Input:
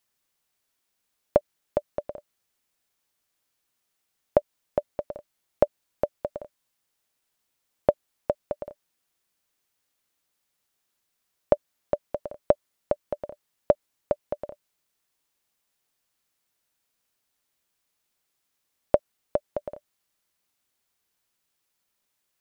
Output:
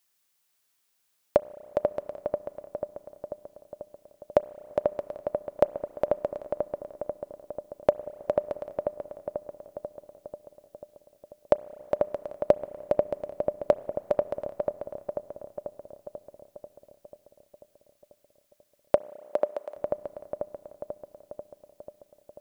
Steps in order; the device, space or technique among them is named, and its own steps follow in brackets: dub delay into a spring reverb (filtered feedback delay 490 ms, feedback 67%, low-pass 1.7 kHz, level -4 dB; spring tank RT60 2.8 s, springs 30/35 ms, chirp 55 ms, DRR 18 dB); 18.96–19.75 s: high-pass 140 Hz -> 520 Hz 12 dB/octave; tilt EQ +1.5 dB/octave

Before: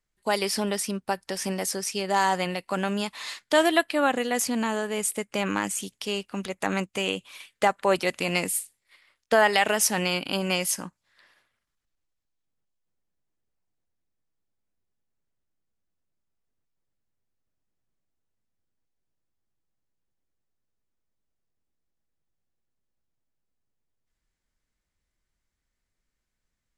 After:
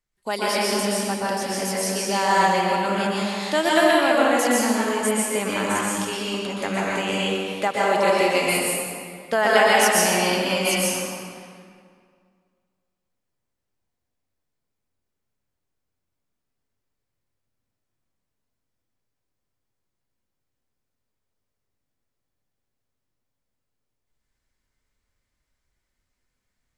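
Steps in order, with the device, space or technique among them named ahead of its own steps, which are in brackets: stairwell (reverberation RT60 2.1 s, pre-delay 114 ms, DRR -6.5 dB); 7.63–8.46 s: high-pass 100 Hz -> 210 Hz; trim -2 dB

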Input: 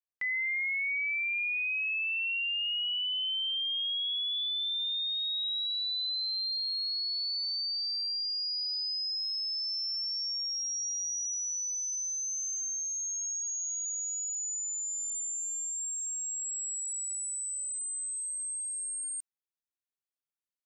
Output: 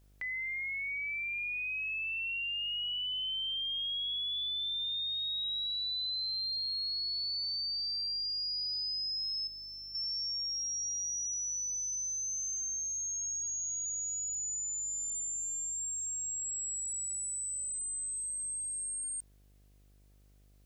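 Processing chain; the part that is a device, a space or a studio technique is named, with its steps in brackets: 9.47–9.95 s: low-pass 1.7 kHz 6 dB/octave; video cassette with head-switching buzz (mains buzz 50 Hz, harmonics 15, -61 dBFS -8 dB/octave; white noise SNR 40 dB); dynamic bell 2 kHz, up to -4 dB, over -48 dBFS, Q 1.2; trim -1.5 dB

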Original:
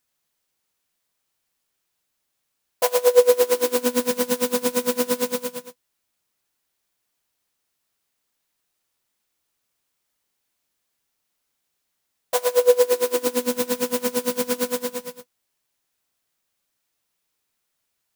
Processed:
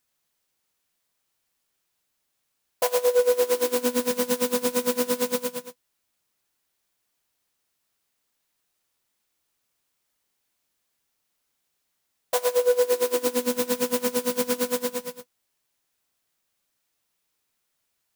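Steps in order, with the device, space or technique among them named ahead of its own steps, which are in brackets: soft clipper into limiter (saturation -7.5 dBFS, distortion -19 dB; peak limiter -13 dBFS, peak gain reduction 5 dB)

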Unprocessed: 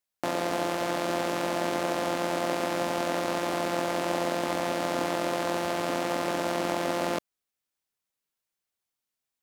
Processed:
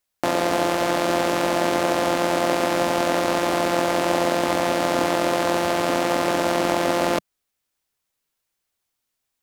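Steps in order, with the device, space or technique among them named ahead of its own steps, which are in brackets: low shelf boost with a cut just above (bass shelf 99 Hz +5.5 dB; peaking EQ 180 Hz -3 dB 0.51 oct); trim +7.5 dB

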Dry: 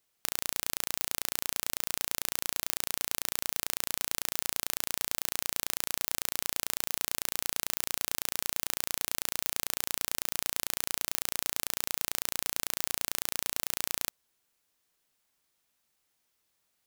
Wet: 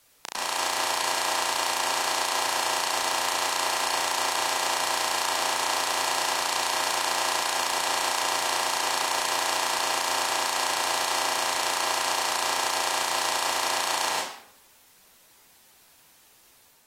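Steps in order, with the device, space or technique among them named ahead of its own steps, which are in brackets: filmed off a television (band-pass 280–7000 Hz; peaking EQ 910 Hz +9 dB 0.55 oct; reverberation RT60 0.65 s, pre-delay 98 ms, DRR -7 dB; white noise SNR 29 dB; level rider gain up to 3.5 dB; AAC 48 kbps 44.1 kHz)

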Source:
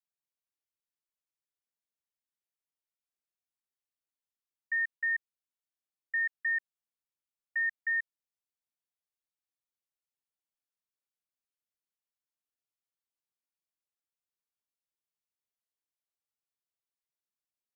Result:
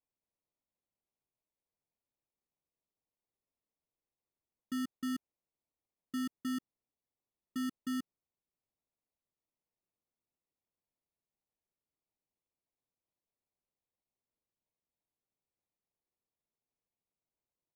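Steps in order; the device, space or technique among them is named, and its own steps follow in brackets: crushed at another speed (playback speed 0.8×; sample-and-hold 35×; playback speed 1.25×); trim -5.5 dB

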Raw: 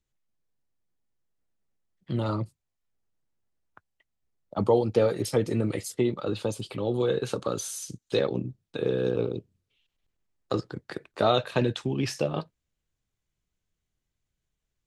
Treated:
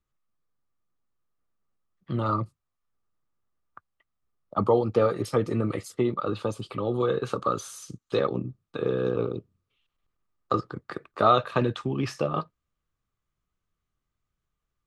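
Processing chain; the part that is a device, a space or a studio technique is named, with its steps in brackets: inside a helmet (treble shelf 4.1 kHz -8.5 dB; small resonant body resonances 1.2 kHz, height 14 dB, ringing for 20 ms)

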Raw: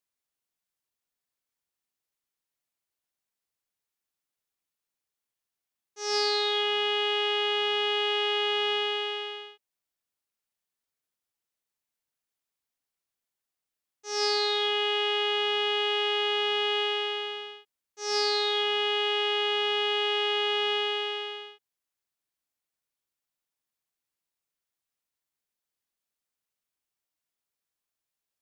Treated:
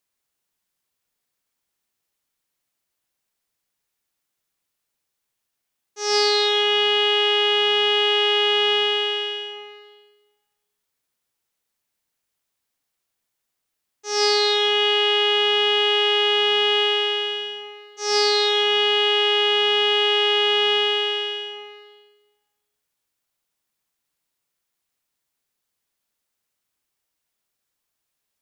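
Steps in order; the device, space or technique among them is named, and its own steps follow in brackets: compressed reverb return (on a send at -6 dB: reverberation RT60 1.4 s, pre-delay 87 ms + compression, threshold -31 dBFS, peak gain reduction 9.5 dB); on the sum: trim +7.5 dB

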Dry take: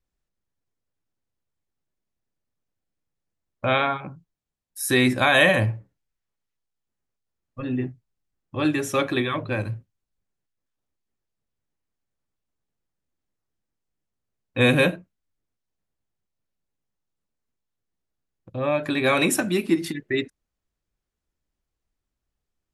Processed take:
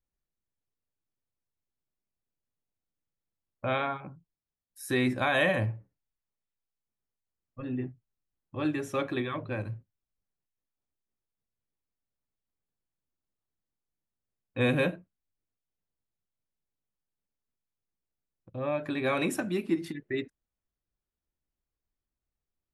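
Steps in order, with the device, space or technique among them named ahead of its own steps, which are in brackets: behind a face mask (treble shelf 2.9 kHz -8 dB); trim -7 dB

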